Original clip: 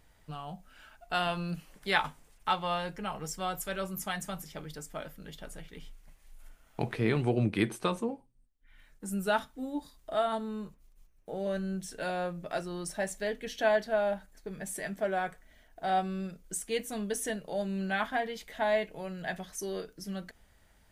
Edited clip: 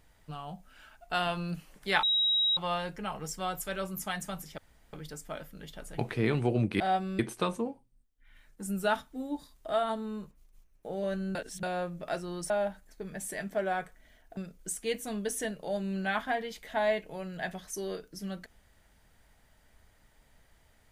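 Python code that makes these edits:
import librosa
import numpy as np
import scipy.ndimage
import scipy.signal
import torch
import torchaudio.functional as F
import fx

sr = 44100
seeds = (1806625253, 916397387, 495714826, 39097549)

y = fx.edit(x, sr, fx.bleep(start_s=2.03, length_s=0.54, hz=3830.0, db=-23.5),
    fx.insert_room_tone(at_s=4.58, length_s=0.35),
    fx.cut(start_s=5.63, length_s=1.17),
    fx.reverse_span(start_s=11.78, length_s=0.28),
    fx.cut(start_s=12.93, length_s=1.03),
    fx.move(start_s=15.83, length_s=0.39, to_s=7.62), tone=tone)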